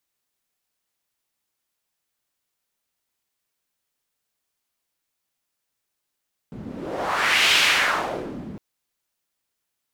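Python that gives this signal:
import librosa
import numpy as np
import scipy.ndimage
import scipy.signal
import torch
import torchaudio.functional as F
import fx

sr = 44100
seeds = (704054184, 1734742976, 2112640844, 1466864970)

y = fx.wind(sr, seeds[0], length_s=2.06, low_hz=190.0, high_hz=2900.0, q=1.9, gusts=1, swing_db=18.5)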